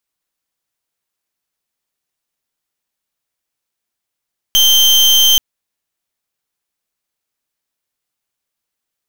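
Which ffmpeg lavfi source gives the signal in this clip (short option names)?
-f lavfi -i "aevalsrc='0.335*(2*lt(mod(3130*t,1),0.35)-1)':d=0.83:s=44100"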